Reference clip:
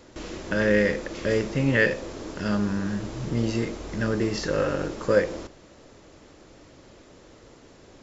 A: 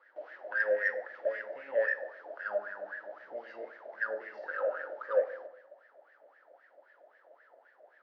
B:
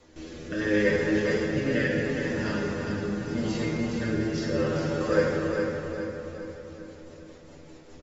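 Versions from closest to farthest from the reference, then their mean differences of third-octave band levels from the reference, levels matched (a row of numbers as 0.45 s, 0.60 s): B, A; 5.0 dB, 13.5 dB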